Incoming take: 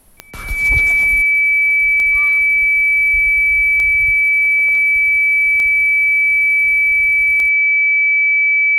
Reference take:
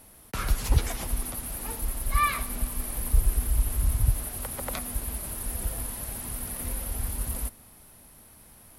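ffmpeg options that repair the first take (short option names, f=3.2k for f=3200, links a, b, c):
-af "adeclick=t=4,bandreject=f=2.3k:w=30,agate=range=-21dB:threshold=-5dB,asetnsamples=n=441:p=0,asendcmd='1.22 volume volume 10dB',volume=0dB"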